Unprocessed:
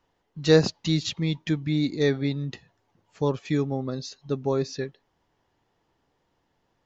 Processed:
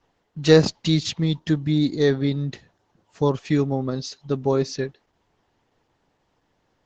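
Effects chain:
0:01.21–0:03.51: parametric band 2,300 Hz −13 dB → −2.5 dB 0.27 octaves
level +4.5 dB
Opus 12 kbit/s 48,000 Hz

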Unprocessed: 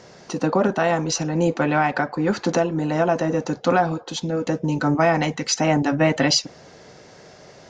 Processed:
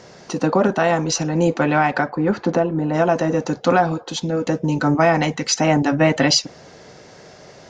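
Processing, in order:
0:02.09–0:02.93: low-pass filter 1,800 Hz → 1,100 Hz 6 dB per octave
level +2.5 dB

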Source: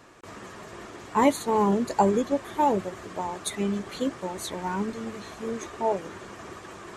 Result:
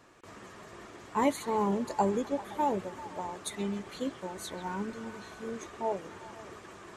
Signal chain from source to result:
0:04.21–0:05.55: steady tone 1,500 Hz −48 dBFS
echo through a band-pass that steps 130 ms, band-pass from 2,700 Hz, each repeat −0.7 octaves, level −8.5 dB
level −6.5 dB

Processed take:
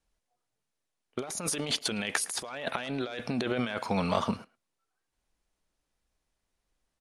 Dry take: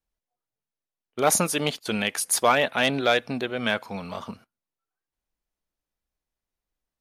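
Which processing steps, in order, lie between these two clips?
Butterworth low-pass 11,000 Hz 36 dB per octave
compressor whose output falls as the input rises −33 dBFS, ratio −1
far-end echo of a speakerphone 110 ms, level −19 dB

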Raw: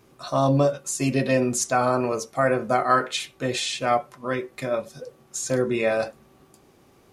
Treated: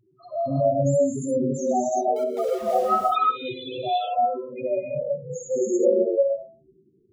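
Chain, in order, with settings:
hum removal 132.6 Hz, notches 20
spectral peaks only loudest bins 2
0:02.16–0:02.79: centre clipping without the shift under −38.5 dBFS
0:04.77–0:05.93: low-shelf EQ 280 Hz +11.5 dB
reverb whose tail is shaped and stops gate 380 ms rising, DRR −3.5 dB

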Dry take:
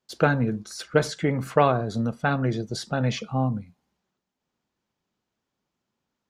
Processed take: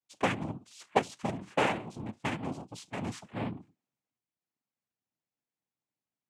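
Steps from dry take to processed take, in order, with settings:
harmonic generator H 7 −21 dB, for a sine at −5 dBFS
cochlear-implant simulation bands 4
level −7 dB

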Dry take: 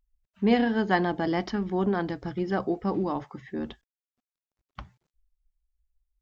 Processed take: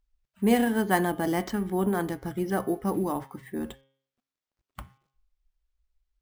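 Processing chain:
decimation without filtering 4×
hum removal 134.8 Hz, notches 27

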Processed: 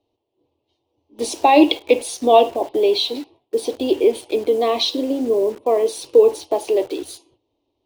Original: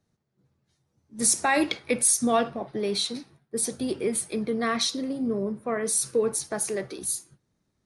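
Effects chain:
drawn EQ curve 110 Hz 0 dB, 170 Hz −24 dB, 290 Hz +12 dB, 990 Hz +11 dB, 1,500 Hz −20 dB, 2,900 Hz +14 dB, 7,700 Hz −12 dB
in parallel at −4.5 dB: bit-depth reduction 6 bits, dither none
on the sum: level −3 dB

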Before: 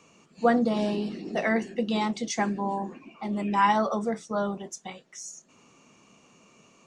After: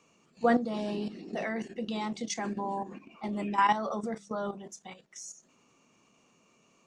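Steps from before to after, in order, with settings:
mains-hum notches 50/100/150/200 Hz
output level in coarse steps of 11 dB

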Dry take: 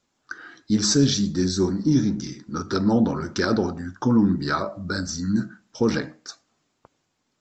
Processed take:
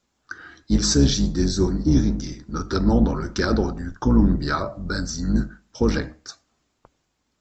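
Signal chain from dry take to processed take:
sub-octave generator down 2 octaves, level −1 dB

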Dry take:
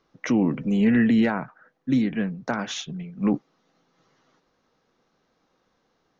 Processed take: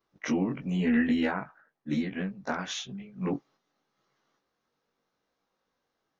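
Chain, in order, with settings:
every overlapping window played backwards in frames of 42 ms
noise gate −53 dBFS, range −6 dB
low-shelf EQ 430 Hz −5 dB

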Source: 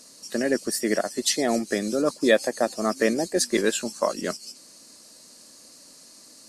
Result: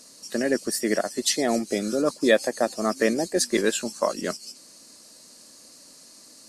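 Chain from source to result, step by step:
healed spectral selection 0:01.74–0:01.96, 950–1,900 Hz both

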